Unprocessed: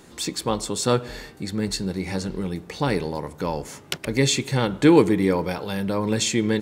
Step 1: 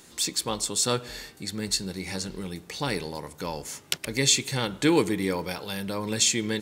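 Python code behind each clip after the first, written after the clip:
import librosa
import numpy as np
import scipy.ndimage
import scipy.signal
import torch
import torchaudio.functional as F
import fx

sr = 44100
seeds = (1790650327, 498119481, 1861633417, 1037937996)

y = fx.high_shelf(x, sr, hz=2200.0, db=12.0)
y = y * 10.0 ** (-7.5 / 20.0)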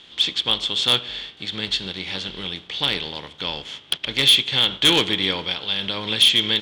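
y = fx.spec_flatten(x, sr, power=0.69)
y = fx.lowpass_res(y, sr, hz=3300.0, q=10.0)
y = np.clip(y, -10.0 ** (-9.0 / 20.0), 10.0 ** (-9.0 / 20.0))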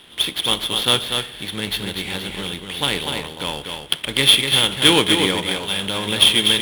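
y = scipy.signal.medfilt(x, 9)
y = y + 10.0 ** (-5.5 / 20.0) * np.pad(y, (int(244 * sr / 1000.0), 0))[:len(y)]
y = y * 10.0 ** (4.0 / 20.0)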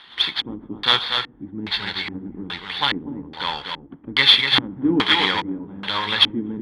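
y = fx.spec_quant(x, sr, step_db=15)
y = fx.filter_lfo_lowpass(y, sr, shape='square', hz=1.2, low_hz=280.0, high_hz=4400.0, q=5.0)
y = fx.band_shelf(y, sr, hz=1300.0, db=12.5, octaves=1.7)
y = y * 10.0 ** (-7.0 / 20.0)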